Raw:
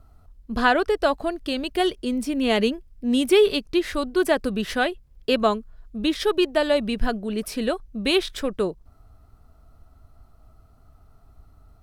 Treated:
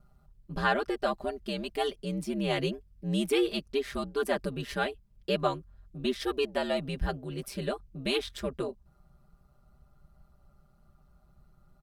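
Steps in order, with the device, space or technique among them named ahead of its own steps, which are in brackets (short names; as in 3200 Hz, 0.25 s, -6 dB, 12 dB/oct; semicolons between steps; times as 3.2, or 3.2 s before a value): ring-modulated robot voice (ring modulator 66 Hz; comb 5 ms, depth 81%); gain -7.5 dB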